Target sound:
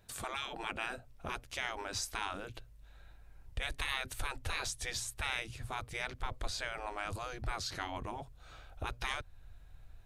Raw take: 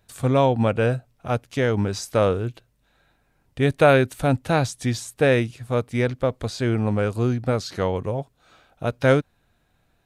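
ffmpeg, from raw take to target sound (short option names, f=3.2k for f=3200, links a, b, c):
-filter_complex "[0:a]afftfilt=real='re*lt(hypot(re,im),0.158)':imag='im*lt(hypot(re,im),0.158)':win_size=1024:overlap=0.75,asubboost=boost=11:cutoff=68,asplit=2[a][b];[b]acompressor=threshold=-42dB:ratio=6,volume=0dB[c];[a][c]amix=inputs=2:normalize=0,volume=-7dB"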